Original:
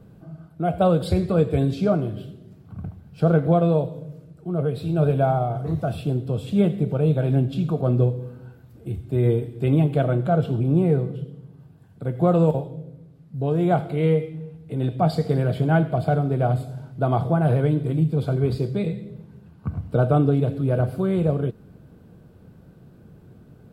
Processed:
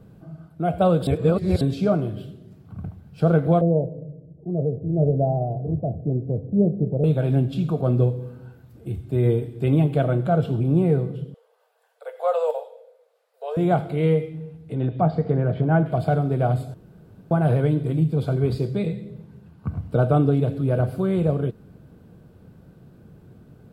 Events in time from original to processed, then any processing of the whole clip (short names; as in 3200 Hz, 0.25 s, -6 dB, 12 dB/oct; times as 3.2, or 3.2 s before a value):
1.07–1.61 reverse
3.61–7.04 steep low-pass 690 Hz
11.34–13.57 steep high-pass 460 Hz 96 dB/oct
14.64–15.86 treble ducked by the level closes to 1700 Hz, closed at -18 dBFS
16.74–17.31 room tone